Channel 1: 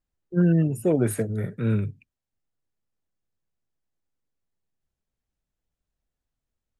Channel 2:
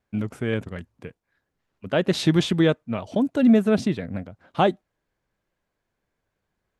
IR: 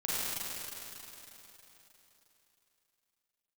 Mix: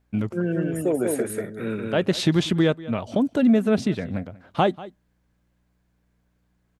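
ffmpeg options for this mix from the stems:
-filter_complex "[0:a]highpass=290,aeval=exprs='val(0)+0.000355*(sin(2*PI*60*n/s)+sin(2*PI*2*60*n/s)/2+sin(2*PI*3*60*n/s)/3+sin(2*PI*4*60*n/s)/4+sin(2*PI*5*60*n/s)/5)':c=same,volume=1.26,asplit=3[s0][s1][s2];[s1]volume=0.668[s3];[1:a]volume=1.33,asplit=2[s4][s5];[s5]volume=0.0891[s6];[s2]apad=whole_len=299489[s7];[s4][s7]sidechaincompress=threshold=0.00631:ratio=10:attack=6.2:release=143[s8];[s3][s6]amix=inputs=2:normalize=0,aecho=0:1:189:1[s9];[s0][s8][s9]amix=inputs=3:normalize=0,acompressor=threshold=0.0891:ratio=1.5"

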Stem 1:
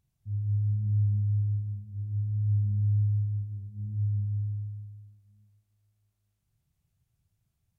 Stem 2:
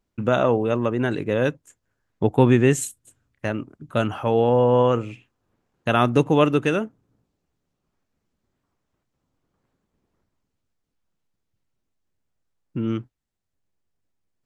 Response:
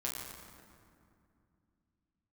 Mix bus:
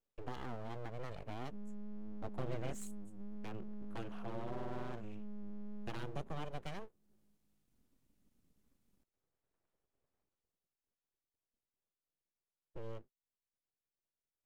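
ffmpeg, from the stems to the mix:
-filter_complex "[0:a]equalizer=f=150:w=1.5:g=4,alimiter=level_in=2.11:limit=0.0631:level=0:latency=1,volume=0.473,adelay=1250,volume=0.944[s0];[1:a]highpass=f=78:p=1,equalizer=f=230:t=o:w=0.94:g=6,volume=0.211[s1];[s0][s1]amix=inputs=2:normalize=0,acrossover=split=420|3000[s2][s3][s4];[s3]acompressor=threshold=0.0158:ratio=4[s5];[s2][s5][s4]amix=inputs=3:normalize=0,aeval=exprs='abs(val(0))':c=same,acompressor=threshold=0.002:ratio=1.5"

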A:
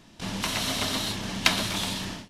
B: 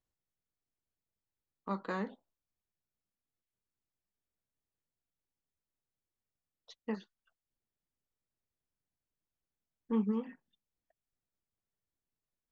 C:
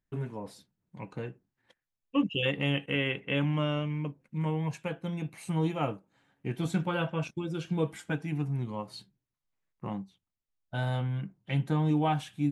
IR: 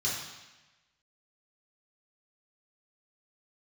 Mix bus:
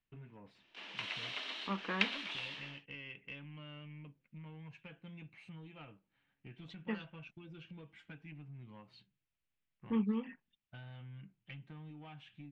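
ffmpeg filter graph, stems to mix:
-filter_complex "[0:a]highpass=f=350:w=0.5412,highpass=f=350:w=1.3066,adelay=550,volume=0.211[s0];[1:a]volume=1.06[s1];[2:a]acompressor=threshold=0.02:ratio=6,asoftclip=type=tanh:threshold=0.0299,volume=0.282[s2];[s0][s1][s2]amix=inputs=3:normalize=0,lowpass=f=2700:t=q:w=2.3,equalizer=f=600:w=0.62:g=-6"

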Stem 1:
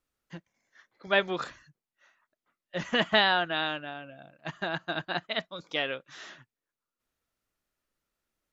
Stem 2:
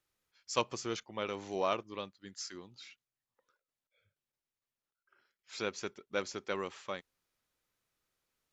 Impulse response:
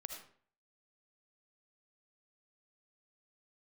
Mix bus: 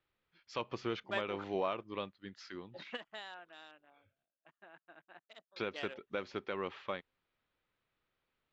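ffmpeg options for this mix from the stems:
-filter_complex "[0:a]afwtdn=0.0158,highpass=300,volume=0.237[s0];[1:a]lowpass=f=3600:w=0.5412,lowpass=f=3600:w=1.3066,volume=1.26,asplit=3[s1][s2][s3];[s1]atrim=end=4.25,asetpts=PTS-STARTPTS,afade=t=out:st=4.246:d=0.004:c=hsin[s4];[s2]atrim=start=4.25:end=5.56,asetpts=PTS-STARTPTS,volume=0[s5];[s3]atrim=start=5.56,asetpts=PTS-STARTPTS,afade=t=in:d=0.004:c=hsin[s6];[s4][s5][s6]concat=n=3:v=0:a=1,asplit=2[s7][s8];[s8]apad=whole_len=375774[s9];[s0][s9]sidechaingate=range=0.251:threshold=0.00141:ratio=16:detection=peak[s10];[s10][s7]amix=inputs=2:normalize=0,alimiter=limit=0.0668:level=0:latency=1:release=185"

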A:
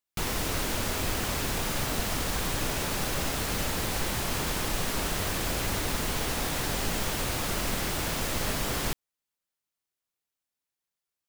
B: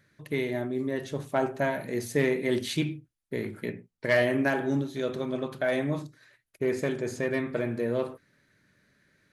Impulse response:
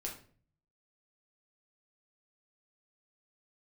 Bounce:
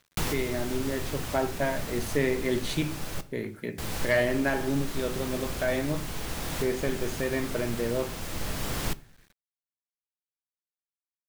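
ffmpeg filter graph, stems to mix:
-filter_complex "[0:a]acrossover=split=240[s0][s1];[s1]acompressor=threshold=0.0251:ratio=6[s2];[s0][s2]amix=inputs=2:normalize=0,volume=1.26,asplit=3[s3][s4][s5];[s3]atrim=end=3.21,asetpts=PTS-STARTPTS,afade=t=out:st=3.206:d=0.004:c=hsin[s6];[s4]atrim=start=3.21:end=3.78,asetpts=PTS-STARTPTS,volume=0[s7];[s5]atrim=start=3.78,asetpts=PTS-STARTPTS,afade=t=in:d=0.004:c=hsin[s8];[s6][s7][s8]concat=n=3:v=0:a=1,asplit=2[s9][s10];[s10]volume=0.2[s11];[1:a]volume=0.891,asplit=2[s12][s13];[s13]apad=whole_len=497750[s14];[s9][s14]sidechaincompress=threshold=0.02:ratio=8:attack=26:release=1240[s15];[2:a]atrim=start_sample=2205[s16];[s11][s16]afir=irnorm=-1:irlink=0[s17];[s15][s12][s17]amix=inputs=3:normalize=0,acrusher=bits=9:mix=0:aa=0.000001"

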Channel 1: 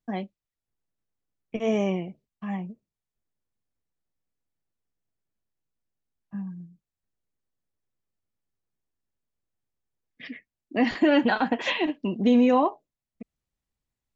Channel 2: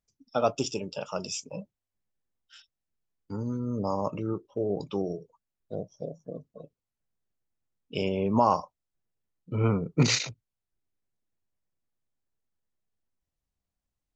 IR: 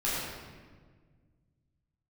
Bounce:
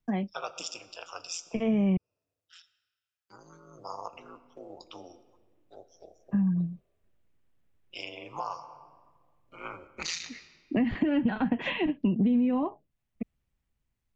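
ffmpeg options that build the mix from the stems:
-filter_complex "[0:a]highshelf=f=3900:t=q:w=1.5:g=-11,dynaudnorm=f=430:g=7:m=2.82,volume=0.944,asplit=3[s0][s1][s2];[s0]atrim=end=1.97,asetpts=PTS-STARTPTS,afade=t=out:st=1.966:d=0.004:c=hsin[s3];[s1]atrim=start=1.97:end=3.91,asetpts=PTS-STARTPTS,volume=0[s4];[s2]atrim=start=3.91,asetpts=PTS-STARTPTS,afade=t=in:d=0.004:c=hsin[s5];[s3][s4][s5]concat=n=3:v=0:a=1[s6];[1:a]highpass=1200,aeval=exprs='val(0)*sin(2*PI*85*n/s)':c=same,volume=1.19,asplit=3[s7][s8][s9];[s8]volume=0.0794[s10];[s9]apad=whole_len=624287[s11];[s6][s11]sidechaincompress=threshold=0.00224:ratio=3:attack=21:release=236[s12];[2:a]atrim=start_sample=2205[s13];[s10][s13]afir=irnorm=-1:irlink=0[s14];[s12][s7][s14]amix=inputs=3:normalize=0,acrossover=split=200[s15][s16];[s16]acompressor=threshold=0.0251:ratio=4[s17];[s15][s17]amix=inputs=2:normalize=0,lowshelf=f=240:g=8,acompressor=threshold=0.0794:ratio=6"

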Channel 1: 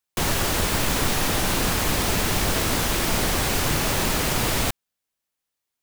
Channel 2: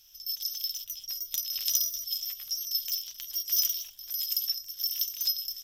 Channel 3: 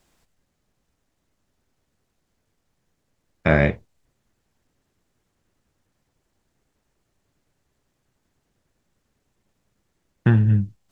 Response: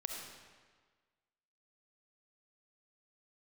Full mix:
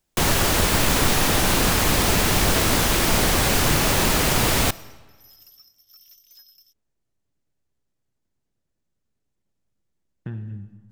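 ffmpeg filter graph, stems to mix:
-filter_complex "[0:a]volume=1.33,asplit=2[s0][s1];[s1]volume=0.15[s2];[1:a]asoftclip=type=tanh:threshold=0.0447,adelay=1100,volume=0.133[s3];[2:a]equalizer=f=1300:w=0.47:g=-4.5,acompressor=threshold=0.0708:ratio=2,volume=0.2,asplit=2[s4][s5];[s5]volume=0.631[s6];[3:a]atrim=start_sample=2205[s7];[s2][s6]amix=inputs=2:normalize=0[s8];[s8][s7]afir=irnorm=-1:irlink=0[s9];[s0][s3][s4][s9]amix=inputs=4:normalize=0"

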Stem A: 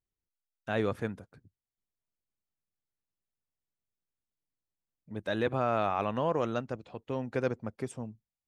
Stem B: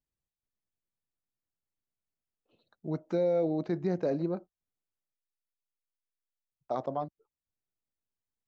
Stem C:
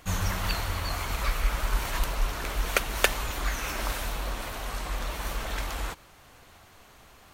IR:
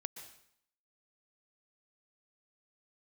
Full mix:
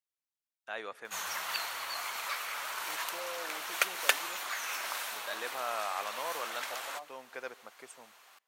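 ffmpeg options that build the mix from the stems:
-filter_complex "[0:a]volume=0.596,asplit=2[s0][s1];[s1]volume=0.251[s2];[1:a]volume=0.422[s3];[2:a]adelay=1050,volume=0.668,asplit=2[s4][s5];[s5]volume=0.224[s6];[3:a]atrim=start_sample=2205[s7];[s2][s6]amix=inputs=2:normalize=0[s8];[s8][s7]afir=irnorm=-1:irlink=0[s9];[s0][s3][s4][s9]amix=inputs=4:normalize=0,highpass=840"

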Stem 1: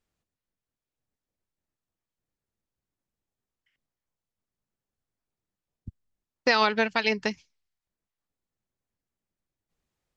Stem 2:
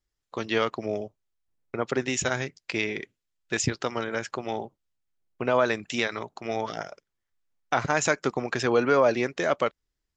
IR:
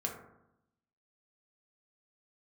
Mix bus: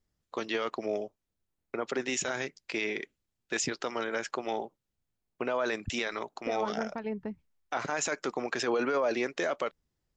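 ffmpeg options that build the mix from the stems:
-filter_complex "[0:a]lowpass=1100,lowshelf=f=300:g=11,alimiter=limit=0.0891:level=0:latency=1:release=455,volume=0.562[s0];[1:a]highpass=250,volume=0.891[s1];[s0][s1]amix=inputs=2:normalize=0,alimiter=limit=0.0944:level=0:latency=1:release=21"

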